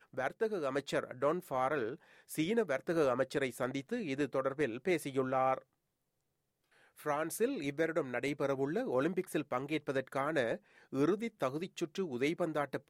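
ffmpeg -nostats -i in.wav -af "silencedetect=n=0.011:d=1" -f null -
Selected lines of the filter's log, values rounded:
silence_start: 5.58
silence_end: 7.06 | silence_duration: 1.48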